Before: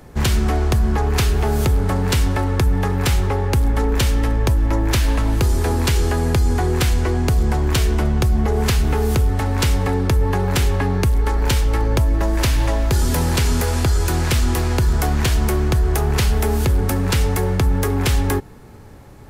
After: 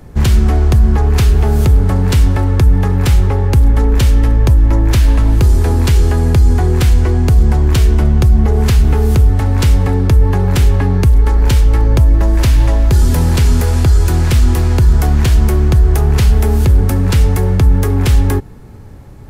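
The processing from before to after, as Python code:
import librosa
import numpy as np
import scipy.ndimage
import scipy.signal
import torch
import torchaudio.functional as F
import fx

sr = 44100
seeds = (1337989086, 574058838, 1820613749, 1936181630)

y = fx.low_shelf(x, sr, hz=250.0, db=9.0)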